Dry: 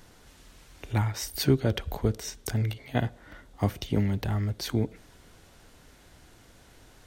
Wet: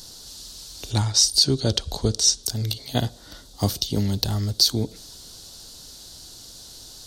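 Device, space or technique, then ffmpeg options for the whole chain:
over-bright horn tweeter: -filter_complex "[0:a]highshelf=f=3.1k:t=q:w=3:g=12.5,alimiter=limit=-8dB:level=0:latency=1:release=271,asettb=1/sr,asplit=3[a][b][c];[a]atrim=end=0.904[d];[b]atrim=start=0.9:end=2.43,asetpts=PTS-STARTPTS,afade=t=in:d=0.004:c=qsin,afade=t=out:st=1.526:d=0.004:c=qsin,lowpass=f=9.7k:w=0.5412,lowpass=f=9.7k:w=1.3066[e];[c]atrim=start=2.426[f];[d][e]acrossfade=d=0.004:c1=hsin:c2=qsin[g];[g][f]acrossfade=d=0.004:c1=qsin:c2=hsin,volume=3.5dB"

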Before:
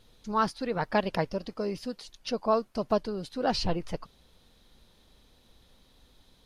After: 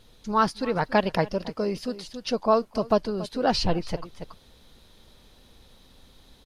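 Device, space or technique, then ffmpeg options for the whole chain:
ducked delay: -filter_complex "[0:a]asplit=3[a][b][c];[b]adelay=280,volume=-3dB[d];[c]apad=whole_len=296900[e];[d][e]sidechaincompress=threshold=-43dB:ratio=8:attack=9.6:release=369[f];[a][f]amix=inputs=2:normalize=0,volume=4.5dB"

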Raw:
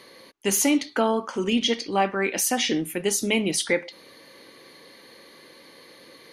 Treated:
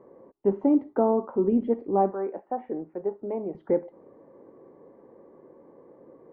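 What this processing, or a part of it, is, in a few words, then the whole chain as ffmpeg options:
under water: -filter_complex "[0:a]lowpass=f=910:w=0.5412,lowpass=f=910:w=1.3066,equalizer=f=390:t=o:w=0.31:g=4.5,asettb=1/sr,asplit=3[a][b][c];[a]atrim=end=2.134[d];[b]atrim=start=2.13:end=3.55,asetpts=PTS-STARTPTS,afade=t=in:d=0.004:c=qsin,afade=t=out:st=1.416:d=0.004:c=qsin,acrossover=split=490 2400:gain=0.224 1 0.0794[e][f][g];[e][f][g]amix=inputs=3:normalize=0[h];[c]atrim=start=3.546[i];[d][h]acrossfade=d=0.004:c1=hsin:c2=qsin[j];[j][i]acrossfade=d=0.004:c1=qsin:c2=hsin"

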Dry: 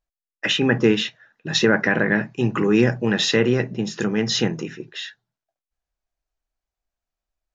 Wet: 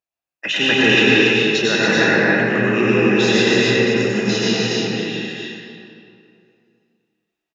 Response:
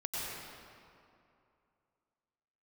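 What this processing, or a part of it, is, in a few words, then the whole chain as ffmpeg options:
stadium PA: -filter_complex "[0:a]asettb=1/sr,asplit=3[a][b][c];[a]atrim=end=0.564[d];[b]atrim=start=0.56:end=0.99,asetpts=PTS-STARTPTS,afade=t=in:d=0.004:c=qsin,afade=t=out:st=0.426:d=0.004:c=qsin,highshelf=f=2k:g=10[e];[c]atrim=start=0.986[f];[d][e]acrossfade=d=0.004:c1=hsin:c2=qsin[g];[g][f]acrossfade=d=0.004:c1=qsin:c2=hsin,highpass=160,equalizer=f=2.6k:t=o:w=0.24:g=8,aecho=1:1:247.8|282.8:0.355|0.708[h];[1:a]atrim=start_sample=2205[i];[h][i]afir=irnorm=-1:irlink=0,volume=-1dB"

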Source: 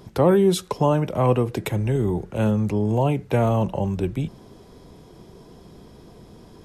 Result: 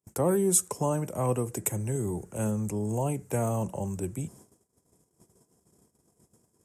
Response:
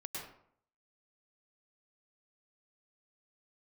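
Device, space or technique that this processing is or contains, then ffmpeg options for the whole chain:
budget condenser microphone: -af "highpass=f=64:w=0.5412,highpass=f=64:w=1.3066,highshelf=f=5.6k:t=q:w=3:g=13.5,agate=range=-36dB:threshold=-42dB:ratio=16:detection=peak,volume=-8.5dB"

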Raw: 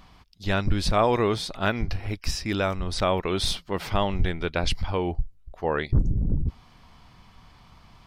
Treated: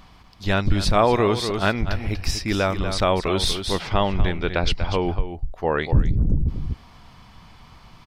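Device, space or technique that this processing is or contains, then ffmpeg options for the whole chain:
ducked delay: -filter_complex "[0:a]asettb=1/sr,asplit=3[a][b][c];[a]atrim=end=3.714[d];[b]atrim=start=3.71:end=5.06,asetpts=PTS-STARTPTS,afade=t=in:d=0.004:c=qsin,afade=t=out:st=1.346:d=0.004:c=qsin,lowpass=5.7k[e];[c]atrim=start=5.056[f];[d][e]acrossfade=d=0.004:c1=hsin:c2=qsin[g];[g][f]acrossfade=d=0.004:c1=qsin:c2=hsin,asplit=3[h][i][j];[i]adelay=241,volume=-3dB[k];[j]apad=whole_len=366087[l];[k][l]sidechaincompress=threshold=-28dB:ratio=8:attack=16:release=368[m];[h][m]amix=inputs=2:normalize=0,volume=3.5dB"

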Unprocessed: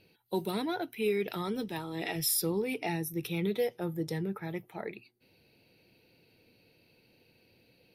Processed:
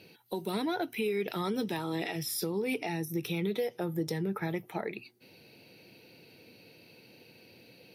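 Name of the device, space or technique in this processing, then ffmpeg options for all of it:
broadcast voice chain: -af "highpass=120,deesser=0.8,acompressor=threshold=-36dB:ratio=5,equalizer=f=5.8k:t=o:w=0.28:g=4,alimiter=level_in=7.5dB:limit=-24dB:level=0:latency=1:release=301,volume=-7.5dB,volume=9dB"

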